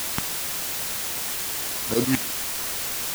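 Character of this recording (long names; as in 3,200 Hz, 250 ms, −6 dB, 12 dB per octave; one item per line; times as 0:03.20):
phaser sweep stages 4, 3.6 Hz, lowest notch 470–1,300 Hz
aliases and images of a low sample rate 4,400 Hz
tremolo saw up 9.3 Hz, depth 95%
a quantiser's noise floor 6 bits, dither triangular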